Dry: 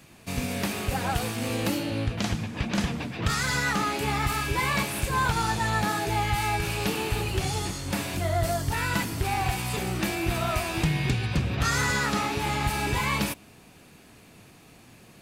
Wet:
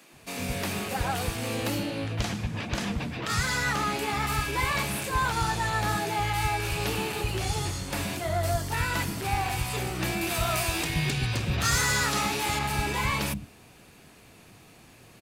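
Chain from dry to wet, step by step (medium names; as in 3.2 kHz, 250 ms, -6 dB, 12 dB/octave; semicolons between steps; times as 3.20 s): 10.21–12.59 s: treble shelf 3.7 kHz +8.5 dB; saturation -17.5 dBFS, distortion -20 dB; bands offset in time highs, lows 120 ms, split 220 Hz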